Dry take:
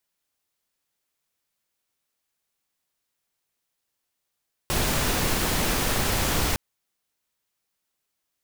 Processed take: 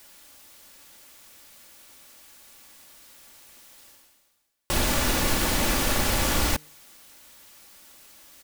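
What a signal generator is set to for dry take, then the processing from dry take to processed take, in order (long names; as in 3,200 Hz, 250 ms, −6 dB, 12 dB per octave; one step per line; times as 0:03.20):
noise pink, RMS −24 dBFS 1.86 s
comb filter 3.5 ms, depth 37%
reversed playback
upward compression, threshold −28 dBFS
reversed playback
hum removal 152.1 Hz, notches 3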